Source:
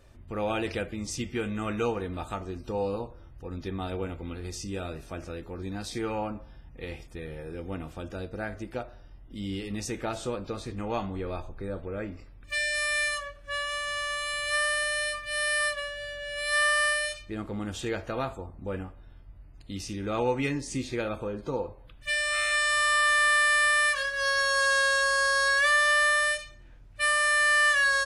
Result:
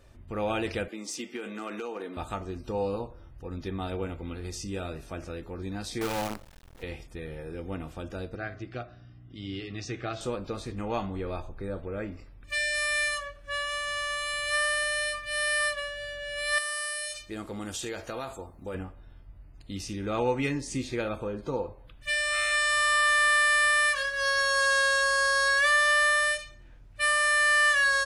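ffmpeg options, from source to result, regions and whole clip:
ffmpeg -i in.wav -filter_complex "[0:a]asettb=1/sr,asplit=3[link_01][link_02][link_03];[link_01]atrim=end=0.884[link_04];[link_02]atrim=start=0.88:end=2.17,asetpts=PTS-STARTPTS,afade=type=in:duration=0.004:curve=qsin,afade=type=out:start_time=1.286:duration=0.004:curve=qsin,highpass=frequency=250:width=0.5412,highpass=frequency=250:width=1.3066,acompressor=threshold=-31dB:ratio=16:attack=3.2:release=140:knee=1:detection=peak,asoftclip=type=hard:threshold=-28.5dB[link_05];[link_03]atrim=start=2.166[link_06];[link_04][link_05]acrossfade=duration=0.004:curve1=hsin:curve2=qsin[link_07];[link_07][link_06]acrossfade=duration=0.004:curve1=qsin:curve2=hsin,asettb=1/sr,asplit=3[link_08][link_09][link_10];[link_08]atrim=end=6.014[link_11];[link_09]atrim=start=6.01:end=6.83,asetpts=PTS-STARTPTS,afade=type=in:duration=0.004:curve=qsin,afade=type=out:start_time=0.816:duration=0.004:curve=qsin,bandreject=frequency=50:width_type=h:width=6,bandreject=frequency=100:width_type=h:width=6,bandreject=frequency=150:width_type=h:width=6,acrusher=bits=6:dc=4:mix=0:aa=0.000001[link_12];[link_10]atrim=start=6.826[link_13];[link_11][link_12]acrossfade=duration=0.004:curve1=hsin:curve2=qsin[link_14];[link_14][link_13]acrossfade=duration=0.004:curve1=qsin:curve2=hsin,asettb=1/sr,asplit=3[link_15][link_16][link_17];[link_15]atrim=end=8.354[link_18];[link_16]atrim=start=8.35:end=10.21,asetpts=PTS-STARTPTS,afade=type=in:duration=0.004:curve=qsin,afade=type=out:start_time=1.856:duration=0.004:curve=qsin,aeval=exprs='val(0)+0.00398*(sin(2*PI*60*n/s)+sin(2*PI*2*60*n/s)/2+sin(2*PI*3*60*n/s)/3+sin(2*PI*4*60*n/s)/4+sin(2*PI*5*60*n/s)/5)':channel_layout=same,asuperstop=centerf=910:order=8:qfactor=4.9,highpass=110,equalizer=frequency=120:width_type=q:width=4:gain=7,equalizer=frequency=210:width_type=q:width=4:gain=-10,equalizer=frequency=520:width_type=q:width=4:gain=-8,lowpass=frequency=5500:width=0.5412,lowpass=frequency=5500:width=1.3066[link_19];[link_17]atrim=start=10.206[link_20];[link_18][link_19]acrossfade=duration=0.004:curve1=hsin:curve2=qsin[link_21];[link_21][link_20]acrossfade=duration=0.004:curve1=qsin:curve2=hsin,asettb=1/sr,asplit=3[link_22][link_23][link_24];[link_22]atrim=end=16.584[link_25];[link_23]atrim=start=16.58:end=18.75,asetpts=PTS-STARTPTS,afade=type=in:duration=0.004:curve=qsin,afade=type=out:start_time=2.166:duration=0.004:curve=qsin,bass=frequency=250:gain=-6,treble=frequency=4000:gain=10,acompressor=threshold=-31dB:ratio=4:attack=3.2:release=140:knee=1:detection=peak[link_26];[link_24]atrim=start=18.746[link_27];[link_25][link_26]acrossfade=duration=0.004:curve1=hsin:curve2=qsin[link_28];[link_28][link_27]acrossfade=duration=0.004:curve1=qsin:curve2=hsin" out.wav

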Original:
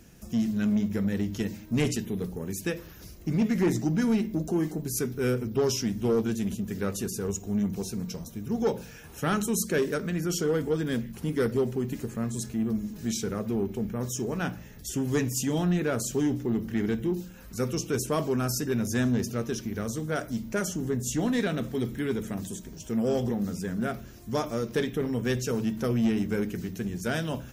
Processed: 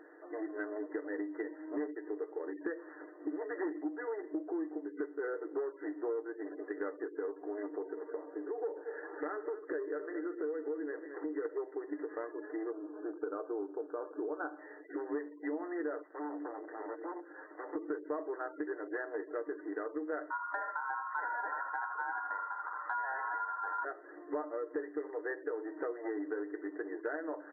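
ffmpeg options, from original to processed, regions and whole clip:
ffmpeg -i in.wav -filter_complex "[0:a]asettb=1/sr,asplit=3[link_01][link_02][link_03];[link_01]atrim=end=7.674[link_04];[link_02]atrim=start=7.67:end=11.45,asetpts=PTS-STARTPTS,afade=type=in:duration=0.004:curve=qsin,afade=type=out:start_time=3.776:duration=0.004:curve=qsin,acompressor=threshold=-33dB:ratio=2.5:attack=3.2:release=140:knee=1:detection=peak,equalizer=frequency=420:width_type=o:width=0.41:gain=4.5,aecho=1:1:224:0.168,atrim=end_sample=166698[link_05];[link_03]atrim=start=11.446[link_06];[link_04][link_05]acrossfade=duration=0.004:curve1=hsin:curve2=qsin[link_07];[link_07][link_06]acrossfade=duration=0.004:curve1=qsin:curve2=hsin,asettb=1/sr,asplit=3[link_08][link_09][link_10];[link_08]atrim=end=12.714[link_11];[link_09]atrim=start=12.71:end=14.59,asetpts=PTS-STARTPTS,afade=type=in:duration=0.004:curve=qsin,afade=type=out:start_time=1.876:duration=0.004:curve=qsin,aemphasis=mode=production:type=50fm,asoftclip=type=hard:threshold=-17dB,asuperstop=centerf=2100:order=8:qfactor=1.6[link_12];[link_10]atrim=start=14.586[link_13];[link_11][link_12]acrossfade=duration=0.004:curve1=hsin:curve2=qsin[link_14];[link_14][link_13]acrossfade=duration=0.004:curve1=qsin:curve2=hsin,asettb=1/sr,asplit=3[link_15][link_16][link_17];[link_15]atrim=end=16.034[link_18];[link_16]atrim=start=16.03:end=17.76,asetpts=PTS-STARTPTS,afade=type=in:duration=0.004:curve=qsin,afade=type=out:start_time=1.726:duration=0.004:curve=qsin,acompressor=threshold=-42dB:ratio=2.5:attack=3.2:release=140:knee=1:detection=peak,aeval=exprs='0.0112*(abs(mod(val(0)/0.0112+3,4)-2)-1)':channel_layout=same[link_19];[link_17]atrim=start=17.756[link_20];[link_18][link_19]acrossfade=duration=0.004:curve1=hsin:curve2=qsin[link_21];[link_21][link_20]acrossfade=duration=0.004:curve1=qsin:curve2=hsin,asettb=1/sr,asplit=3[link_22][link_23][link_24];[link_22]atrim=end=20.304[link_25];[link_23]atrim=start=20.3:end=23.85,asetpts=PTS-STARTPTS,afade=type=in:duration=0.004:curve=qsin,afade=type=out:start_time=3.546:duration=0.004:curve=qsin,equalizer=frequency=220:width=5.5:gain=8.5,aeval=exprs='val(0)*sin(2*PI*1200*n/s)':channel_layout=same,aecho=1:1:81:0.355,atrim=end_sample=156555[link_26];[link_24]atrim=start=23.846[link_27];[link_25][link_26]acrossfade=duration=0.004:curve1=hsin:curve2=qsin[link_28];[link_28][link_27]acrossfade=duration=0.004:curve1=qsin:curve2=hsin,afftfilt=real='re*between(b*sr/4096,280,2000)':imag='im*between(b*sr/4096,280,2000)':win_size=4096:overlap=0.75,aecho=1:1:6.6:0.45,acompressor=threshold=-40dB:ratio=6,volume=4.5dB" out.wav

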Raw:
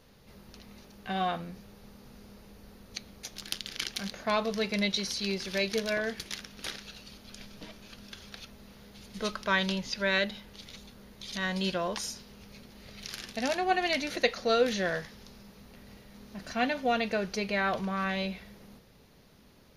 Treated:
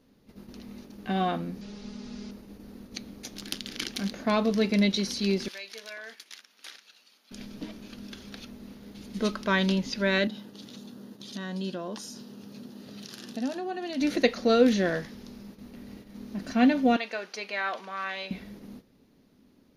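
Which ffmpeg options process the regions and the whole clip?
ffmpeg -i in.wav -filter_complex "[0:a]asettb=1/sr,asplit=3[link_01][link_02][link_03];[link_01]atrim=end=1.614[link_04];[link_02]atrim=start=1.61:end=2.31,asetpts=PTS-STARTPTS,afade=type=in:duration=0.004:curve=qsin,afade=type=out:start_time=0.696:duration=0.004:curve=qsin,lowpass=frequency=6400:width=0.5412,lowpass=frequency=6400:width=1.3066,highshelf=frequency=2400:gain=12,aecho=1:1:4.8:0.74,atrim=end_sample=30870[link_05];[link_03]atrim=start=2.306[link_06];[link_04][link_05]acrossfade=duration=0.004:curve1=hsin:curve2=qsin[link_07];[link_07][link_06]acrossfade=duration=0.004:curve1=qsin:curve2=hsin,asettb=1/sr,asplit=3[link_08][link_09][link_10];[link_08]atrim=end=5.484[link_11];[link_09]atrim=start=5.48:end=7.31,asetpts=PTS-STARTPTS,afade=type=in:duration=0.004:curve=qsin,afade=type=out:start_time=1.826:duration=0.004:curve=qsin,highpass=1000,acompressor=threshold=-44dB:ratio=2:attack=3.2:release=140:knee=1:detection=peak[link_12];[link_10]atrim=start=7.306[link_13];[link_11][link_12]acrossfade=duration=0.004:curve1=hsin:curve2=qsin[link_14];[link_14][link_13]acrossfade=duration=0.004:curve1=qsin:curve2=hsin,asettb=1/sr,asplit=3[link_15][link_16][link_17];[link_15]atrim=end=10.274[link_18];[link_16]atrim=start=10.27:end=14.01,asetpts=PTS-STARTPTS,afade=type=in:duration=0.004:curve=qsin,afade=type=out:start_time=3.736:duration=0.004:curve=qsin,equalizer=frequency=2200:width_type=o:width=0.24:gain=-12.5,acompressor=threshold=-42dB:ratio=2:attack=3.2:release=140:knee=1:detection=peak,highpass=frequency=110:width=0.5412,highpass=frequency=110:width=1.3066[link_19];[link_17]atrim=start=14.006[link_20];[link_18][link_19]acrossfade=duration=0.004:curve1=hsin:curve2=qsin[link_21];[link_21][link_20]acrossfade=duration=0.004:curve1=qsin:curve2=hsin,asettb=1/sr,asplit=3[link_22][link_23][link_24];[link_22]atrim=end=16.964[link_25];[link_23]atrim=start=16.96:end=18.31,asetpts=PTS-STARTPTS,afade=type=in:duration=0.004:curve=qsin,afade=type=out:start_time=1.346:duration=0.004:curve=qsin,highpass=840,highshelf=frequency=10000:gain=-11.5[link_26];[link_24]atrim=start=18.306[link_27];[link_25][link_26]acrossfade=duration=0.004:curve1=hsin:curve2=qsin[link_28];[link_28][link_27]acrossfade=duration=0.004:curve1=qsin:curve2=hsin,equalizer=frequency=270:width=1.4:gain=14,agate=range=-9dB:threshold=-46dB:ratio=16:detection=peak" out.wav

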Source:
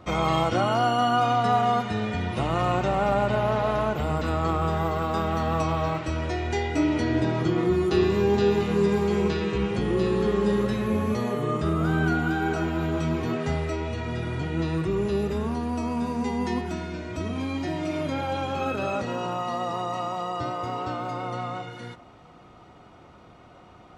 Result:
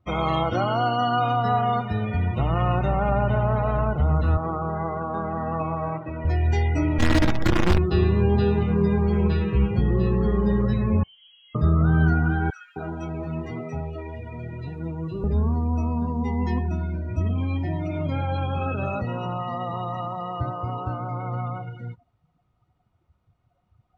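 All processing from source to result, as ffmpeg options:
ffmpeg -i in.wav -filter_complex "[0:a]asettb=1/sr,asplit=3[link_01][link_02][link_03];[link_01]atrim=end=4.374[link_04];[link_02]atrim=start=4.37:end=6.25,asetpts=PTS-STARTPTS,afade=type=in:duration=0.004:curve=qsin,afade=type=out:start_time=1.876:duration=0.004:curve=qsin,highpass=200,lowpass=2600,bandreject=frequency=1300:width=22[link_05];[link_03]atrim=start=6.246[link_06];[link_04][link_05]acrossfade=duration=0.004:curve1=hsin:curve2=qsin[link_07];[link_07][link_06]acrossfade=duration=0.004:curve1=qsin:curve2=hsin,asettb=1/sr,asplit=3[link_08][link_09][link_10];[link_08]atrim=end=6.984[link_11];[link_09]atrim=start=6.98:end=7.78,asetpts=PTS-STARTPTS,afade=type=in:duration=0.004:curve=qsin,afade=type=out:start_time=0.796:duration=0.004:curve=qsin,lowpass=5500,aecho=1:1:3.6:0.9,atrim=end_sample=35280,acrusher=bits=4:dc=4:mix=0:aa=0.000001[link_12];[link_10]atrim=start=7.776[link_13];[link_11][link_12]acrossfade=duration=0.004:curve1=hsin:curve2=qsin[link_14];[link_14][link_13]acrossfade=duration=0.004:curve1=qsin:curve2=hsin,asettb=1/sr,asplit=3[link_15][link_16][link_17];[link_15]atrim=end=11.034[link_18];[link_16]atrim=start=11.03:end=11.55,asetpts=PTS-STARTPTS,afade=type=in:duration=0.004:curve=qsin,afade=type=out:start_time=0.516:duration=0.004:curve=qsin,highpass=frequency=170:poles=1,aeval=exprs='(tanh(200*val(0)+0.6)-tanh(0.6))/200':channel_layout=same,lowpass=frequency=2800:width_type=q:width=0.5098,lowpass=frequency=2800:width_type=q:width=0.6013,lowpass=frequency=2800:width_type=q:width=0.9,lowpass=frequency=2800:width_type=q:width=2.563,afreqshift=-3300[link_19];[link_17]atrim=start=11.546[link_20];[link_18][link_19]acrossfade=duration=0.004:curve1=hsin:curve2=qsin[link_21];[link_21][link_20]acrossfade=duration=0.004:curve1=qsin:curve2=hsin,asettb=1/sr,asplit=3[link_22][link_23][link_24];[link_22]atrim=end=12.504[link_25];[link_23]atrim=start=12.5:end=15.24,asetpts=PTS-STARTPTS,afade=type=in:duration=0.004:curve=qsin,afade=type=out:start_time=2.736:duration=0.004:curve=qsin,highpass=frequency=350:poles=1,aeval=exprs='sgn(val(0))*max(abs(val(0))-0.00282,0)':channel_layout=same,acrossover=split=1400[link_26][link_27];[link_26]adelay=260[link_28];[link_28][link_27]amix=inputs=2:normalize=0,atrim=end_sample=120834[link_29];[link_24]atrim=start=15.236[link_30];[link_25][link_29]acrossfade=duration=0.004:curve1=hsin:curve2=qsin[link_31];[link_31][link_30]acrossfade=duration=0.004:curve1=qsin:curve2=hsin,afftdn=noise_reduction=25:noise_floor=-34,asubboost=boost=4.5:cutoff=140" out.wav

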